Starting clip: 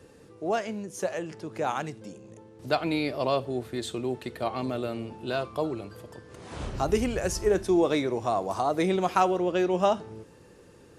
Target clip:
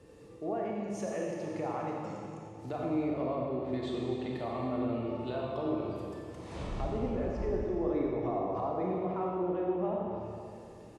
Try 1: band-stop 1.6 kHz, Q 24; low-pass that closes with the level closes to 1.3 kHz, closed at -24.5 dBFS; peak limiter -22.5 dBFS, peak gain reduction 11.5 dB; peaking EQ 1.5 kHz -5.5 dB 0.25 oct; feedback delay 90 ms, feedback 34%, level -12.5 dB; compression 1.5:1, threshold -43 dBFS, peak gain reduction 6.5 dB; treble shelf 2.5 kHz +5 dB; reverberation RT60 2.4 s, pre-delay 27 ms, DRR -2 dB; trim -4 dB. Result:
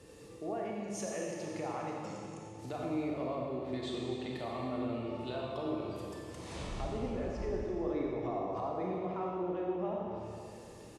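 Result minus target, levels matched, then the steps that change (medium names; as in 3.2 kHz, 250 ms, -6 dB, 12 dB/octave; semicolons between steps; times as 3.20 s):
4 kHz band +6.5 dB; compression: peak gain reduction +4 dB
change: compression 1.5:1, threshold -31.5 dBFS, peak gain reduction 3 dB; change: treble shelf 2.5 kHz -4.5 dB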